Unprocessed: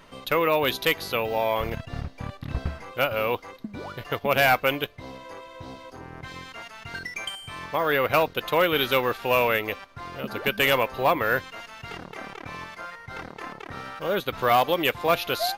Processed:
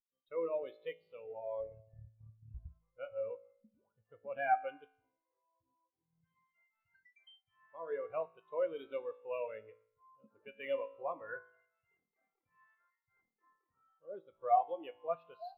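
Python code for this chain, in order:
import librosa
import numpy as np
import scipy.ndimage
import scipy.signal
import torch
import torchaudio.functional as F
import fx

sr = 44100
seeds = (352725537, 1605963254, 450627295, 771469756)

y = fx.comb_fb(x, sr, f0_hz=55.0, decay_s=1.6, harmonics='all', damping=0.0, mix_pct=80)
y = fx.spectral_expand(y, sr, expansion=2.5)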